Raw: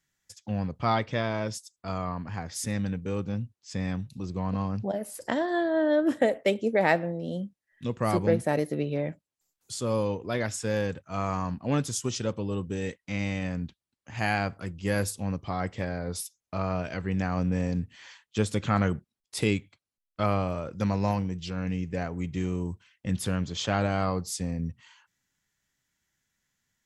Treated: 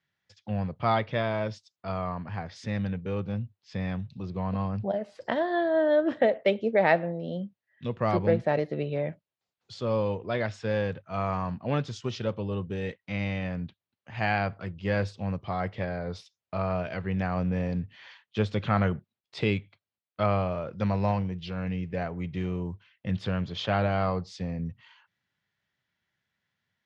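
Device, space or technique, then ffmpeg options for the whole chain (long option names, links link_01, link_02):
guitar cabinet: -af "highpass=98,equalizer=frequency=99:width_type=q:width=4:gain=4,equalizer=frequency=280:width_type=q:width=4:gain=-6,equalizer=frequency=640:width_type=q:width=4:gain=3,lowpass=frequency=4200:width=0.5412,lowpass=frequency=4200:width=1.3066"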